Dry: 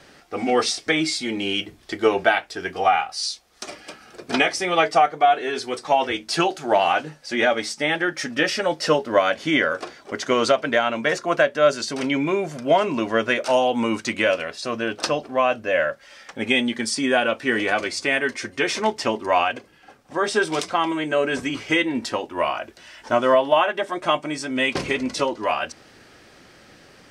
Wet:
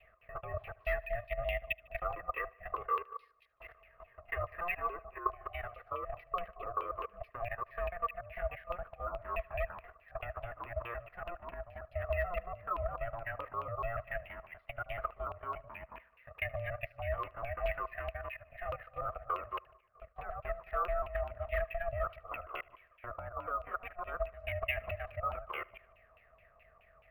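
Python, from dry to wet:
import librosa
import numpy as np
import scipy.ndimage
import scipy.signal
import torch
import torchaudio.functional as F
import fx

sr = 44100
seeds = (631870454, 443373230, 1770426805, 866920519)

p1 = fx.local_reverse(x, sr, ms=144.0)
p2 = fx.env_lowpass_down(p1, sr, base_hz=1300.0, full_db=-16.0)
p3 = fx.low_shelf(p2, sr, hz=80.0, db=8.0)
p4 = fx.level_steps(p3, sr, step_db=13)
p5 = fx.vowel_filter(p4, sr, vowel='u')
p6 = 10.0 ** (-26.0 / 20.0) * (np.abs((p5 / 10.0 ** (-26.0 / 20.0) + 3.0) % 4.0 - 2.0) - 1.0)
p7 = p6 * np.sin(2.0 * np.pi * 350.0 * np.arange(len(p6)) / sr)
p8 = fx.filter_lfo_lowpass(p7, sr, shape='saw_down', hz=4.7, low_hz=960.0, high_hz=2700.0, q=7.4)
p9 = p8 + fx.echo_feedback(p8, sr, ms=75, feedback_pct=60, wet_db=-24.0, dry=0)
y = np.interp(np.arange(len(p9)), np.arange(len(p9))[::3], p9[::3])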